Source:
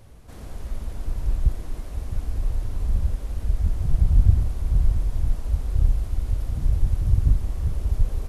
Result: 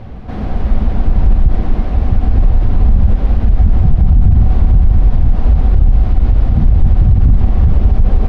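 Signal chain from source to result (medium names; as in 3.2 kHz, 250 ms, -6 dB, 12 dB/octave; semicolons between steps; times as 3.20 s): distance through air 300 m; small resonant body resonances 210/750 Hz, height 8 dB; loudness maximiser +19 dB; trim -1 dB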